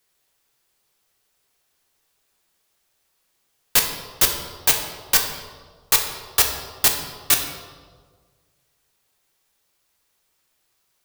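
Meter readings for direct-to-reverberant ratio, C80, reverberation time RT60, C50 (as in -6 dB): 2.5 dB, 7.5 dB, 1.6 s, 6.0 dB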